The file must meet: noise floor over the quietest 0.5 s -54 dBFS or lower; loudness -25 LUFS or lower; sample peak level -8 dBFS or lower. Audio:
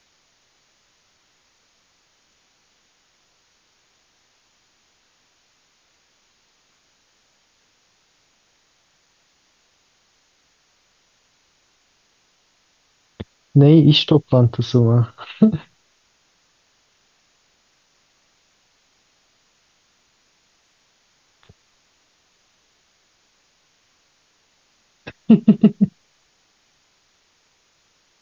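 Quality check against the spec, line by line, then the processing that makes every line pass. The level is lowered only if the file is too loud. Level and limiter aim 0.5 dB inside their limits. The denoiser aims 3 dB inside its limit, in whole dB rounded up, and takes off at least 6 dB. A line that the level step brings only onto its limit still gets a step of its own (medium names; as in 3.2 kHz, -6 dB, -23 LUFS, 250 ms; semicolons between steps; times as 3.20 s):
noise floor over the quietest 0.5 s -62 dBFS: pass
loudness -15.5 LUFS: fail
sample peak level -2.0 dBFS: fail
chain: trim -10 dB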